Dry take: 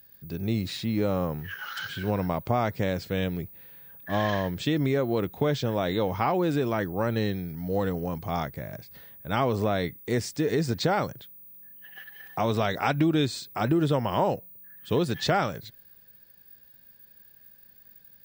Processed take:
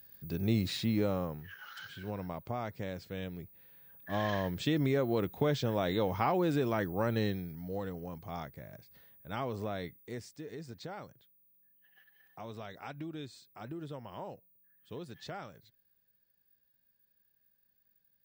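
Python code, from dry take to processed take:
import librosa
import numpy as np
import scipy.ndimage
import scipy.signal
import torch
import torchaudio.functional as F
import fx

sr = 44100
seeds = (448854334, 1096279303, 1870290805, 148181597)

y = fx.gain(x, sr, db=fx.line((0.86, -2.0), (1.52, -12.0), (3.33, -12.0), (4.59, -4.5), (7.27, -4.5), (7.83, -11.5), (9.83, -11.5), (10.45, -19.0)))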